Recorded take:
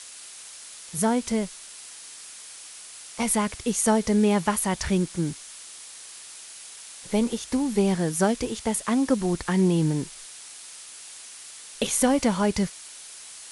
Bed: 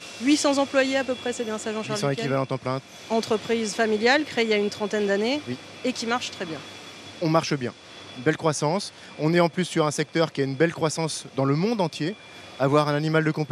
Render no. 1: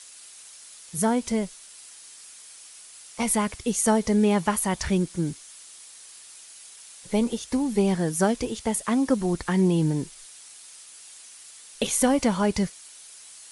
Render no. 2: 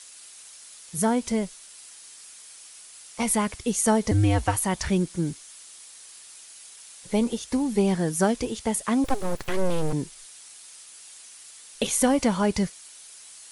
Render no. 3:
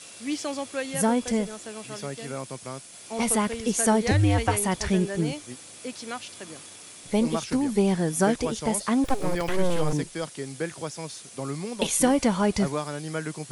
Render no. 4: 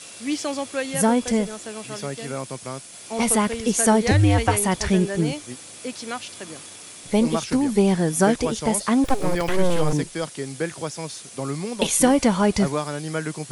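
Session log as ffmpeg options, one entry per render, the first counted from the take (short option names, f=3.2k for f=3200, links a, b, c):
-af "afftdn=nr=6:nf=-44"
-filter_complex "[0:a]asettb=1/sr,asplit=3[a][b][c];[a]atrim=end=4.114[d];[b]atrim=start=4.11:end=4.57,asetpts=PTS-STARTPTS,afade=t=in:d=0.004:c=qsin,afade=t=out:st=0.456:d=0.004:c=qsin,afreqshift=-110[e];[c]atrim=start=4.566[f];[d][e]acrossfade=d=0.004:c1=hsin:c2=qsin[g];[g][f]acrossfade=d=0.004:c1=qsin:c2=hsin,asettb=1/sr,asplit=3[h][i][j];[h]atrim=end=9.044[k];[i]atrim=start=9.04:end=9.93,asetpts=PTS-STARTPTS,afade=t=in:d=0.004:c=qsin,afade=t=out:st=0.886:d=0.004:c=qsin,aeval=exprs='abs(val(0))':c=same[l];[j]atrim=start=9.926[m];[k][l]acrossfade=d=0.004:c1=hsin:c2=qsin[n];[n][m]acrossfade=d=0.004:c1=qsin:c2=hsin"
-filter_complex "[1:a]volume=-10dB[a];[0:a][a]amix=inputs=2:normalize=0"
-af "volume=4dB"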